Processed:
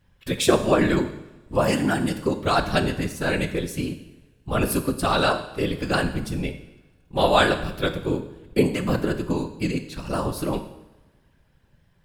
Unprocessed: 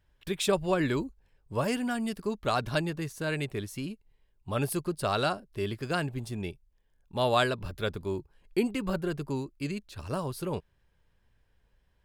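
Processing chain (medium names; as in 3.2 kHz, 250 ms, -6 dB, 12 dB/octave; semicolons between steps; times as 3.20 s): whisper effect; two-slope reverb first 0.85 s, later 2.5 s, from -24 dB, DRR 7 dB; trim +7 dB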